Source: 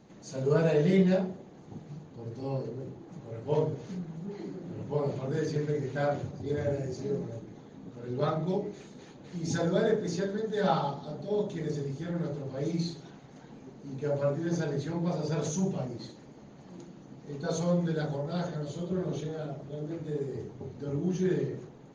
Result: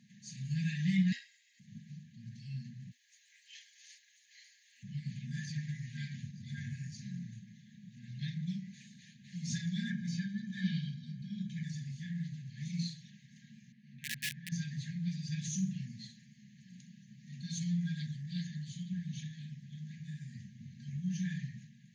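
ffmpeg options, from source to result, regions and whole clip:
-filter_complex "[0:a]asettb=1/sr,asplit=3[a][b][c];[a]atrim=end=1.124[d];[b]atrim=start=1.12:end=1.6,asetpts=PTS-STARTPTS,afade=t=in:d=0.004:c=qsin,afade=t=out:st=0.476:d=0.004:c=qsin,highshelf=f=4.5k:g=4.5,aecho=1:1:1.7:0.48,atrim=end_sample=21168,afreqshift=250[e];[c]atrim=start=1.596[f];[d][e]acrossfade=d=0.004:c1=hsin:c2=qsin[g];[g][f]acrossfade=d=0.004:c1=qsin:c2=hsin,asettb=1/sr,asplit=3[h][i][j];[h]atrim=end=2.914[k];[i]atrim=start=2.91:end=4.83,asetpts=PTS-STARTPTS,afade=t=in:d=0.004:c=qsin,afade=t=out:st=1.916:d=0.004:c=qsin,highpass=f=1.4k:w=0.5412,highpass=f=1.4k:w=1.3066,highshelf=f=5.7k:g=10[l];[j]atrim=start=4.826[m];[k][l]acrossfade=d=0.004:c1=hsin:c2=qsin[n];[n][m]acrossfade=d=0.004:c1=qsin:c2=hsin,asettb=1/sr,asplit=3[o][p][q];[o]atrim=end=9.904[r];[p]atrim=start=9.9:end=11.63,asetpts=PTS-STARTPTS,afade=t=in:d=0.004:c=qsin,afade=t=out:st=1.726:d=0.004:c=qsin,lowpass=f=3k:p=1,aecho=1:1:1.3:0.84,atrim=end_sample=76293[s];[q]atrim=start=11.626[t];[r][s]acrossfade=d=0.004:c1=hsin:c2=qsin[u];[u][t]acrossfade=d=0.004:c1=qsin:c2=hsin,asettb=1/sr,asplit=3[v][w][x];[v]atrim=end=13.724[y];[w]atrim=start=13.72:end=14.52,asetpts=PTS-STARTPTS,afade=t=in:d=0.004:c=qsin,afade=t=out:st=0.796:d=0.004:c=qsin,highpass=130,lowpass=2.5k,lowshelf=f=410:g=-6.5,aeval=exprs='(mod(23.7*val(0)+1,2)-1)/23.7':c=same[z];[x]atrim=start=14.516[aa];[y][z]acrossfade=d=0.004:c1=hsin:c2=qsin[ab];[ab][aa]acrossfade=d=0.004:c1=qsin:c2=hsin,afftfilt=real='re*(1-between(b*sr/4096,240,1600))':imag='im*(1-between(b*sr/4096,240,1600))':win_size=4096:overlap=0.75,highpass=f=110:w=0.5412,highpass=f=110:w=1.3066,lowshelf=f=210:g=-3.5,volume=-2dB"

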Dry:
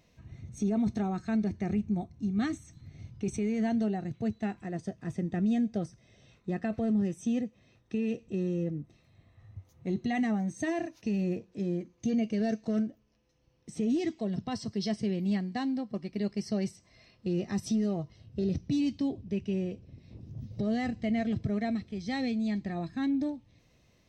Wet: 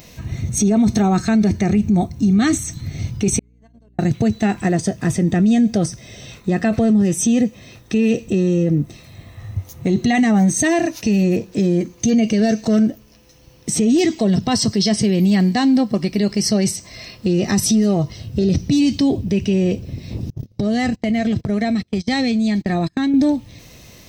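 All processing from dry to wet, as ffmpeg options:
-filter_complex "[0:a]asettb=1/sr,asplit=3[a][b][c];[a]atrim=end=3.394[d];[b]atrim=start=3.39:end=3.99,asetpts=PTS-STARTPTS,afade=t=in:d=0.004:c=qsin,afade=t=out:st=0.596:d=0.004:c=qsin,agate=range=-57dB:threshold=-23dB:ratio=16:release=100:detection=peak,aecho=1:1:1.9:0.5,atrim=end_sample=26460,aeval=exprs='val(0)+0.000251*(sin(2*PI*60*n/s)+sin(2*PI*2*60*n/s)/2+sin(2*PI*3*60*n/s)/3+sin(2*PI*4*60*n/s)/4+sin(2*PI*5*60*n/s)/5)':c=same[e];[c]atrim=start=3.986[f];[d][e]acrossfade=d=0.004:c1=hsin:c2=qsin[g];[g][f]acrossfade=d=0.004:c1=qsin:c2=hsin,asettb=1/sr,asplit=3[h][i][j];[h]atrim=end=20.304[k];[i]atrim=start=20.3:end=23.14,asetpts=PTS-STARTPTS,afade=t=in:d=0.004:c=qsin,afade=t=out:st=2.836:d=0.004:c=qsin,agate=range=-32dB:threshold=-38dB:ratio=16:release=100:detection=peak,acompressor=threshold=-36dB:ratio=12:attack=3.2:release=140:knee=1:detection=peak[l];[j]atrim=start=23.136[m];[k][l]acrossfade=d=0.004:c1=hsin:c2=qsin[n];[n][m]acrossfade=d=0.004:c1=qsin:c2=hsin,aemphasis=mode=production:type=50kf,alimiter=level_in=29dB:limit=-1dB:release=50:level=0:latency=1,volume=-8dB"

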